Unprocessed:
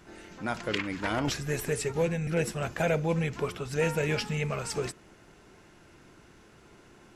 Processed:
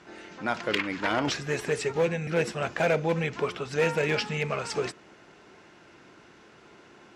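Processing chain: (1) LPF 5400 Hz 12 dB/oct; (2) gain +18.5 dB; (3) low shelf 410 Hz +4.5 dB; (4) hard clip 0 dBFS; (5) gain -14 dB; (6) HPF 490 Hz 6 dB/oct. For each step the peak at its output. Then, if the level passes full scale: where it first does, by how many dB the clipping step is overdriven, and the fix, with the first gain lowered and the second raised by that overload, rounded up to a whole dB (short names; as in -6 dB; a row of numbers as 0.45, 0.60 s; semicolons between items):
-16.0, +2.5, +4.0, 0.0, -14.0, -12.5 dBFS; step 2, 4.0 dB; step 2 +14.5 dB, step 5 -10 dB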